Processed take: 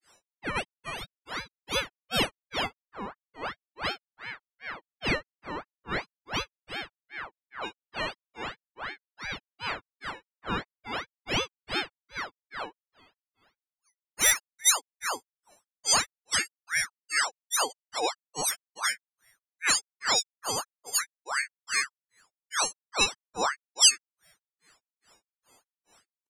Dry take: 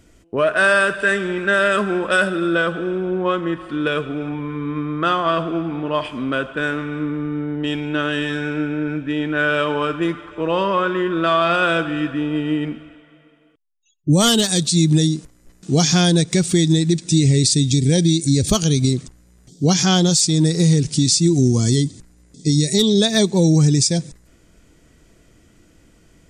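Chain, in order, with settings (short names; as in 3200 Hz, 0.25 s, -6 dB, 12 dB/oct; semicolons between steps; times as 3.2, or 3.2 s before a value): frequency quantiser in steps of 6 st; grains 0.235 s, grains 2.4/s, spray 21 ms, pitch spread up and down by 3 st; ring modulator with a swept carrier 1300 Hz, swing 55%, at 2.8 Hz; gain -8.5 dB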